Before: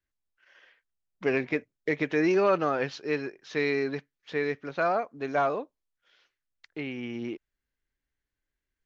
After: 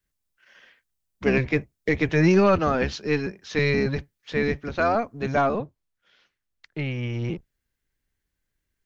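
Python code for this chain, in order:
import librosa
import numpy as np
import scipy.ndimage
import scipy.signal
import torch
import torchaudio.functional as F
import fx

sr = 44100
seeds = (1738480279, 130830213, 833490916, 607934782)

y = fx.octave_divider(x, sr, octaves=1, level_db=3.0)
y = fx.high_shelf(y, sr, hz=5000.0, db=fx.steps((0.0, 8.0), (5.4, -2.0), (6.78, 5.5)))
y = F.gain(torch.from_numpy(y), 3.5).numpy()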